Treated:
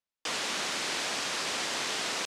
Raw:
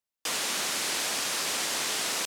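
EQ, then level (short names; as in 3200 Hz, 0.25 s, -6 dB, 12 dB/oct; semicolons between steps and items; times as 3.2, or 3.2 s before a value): air absorption 67 m; 0.0 dB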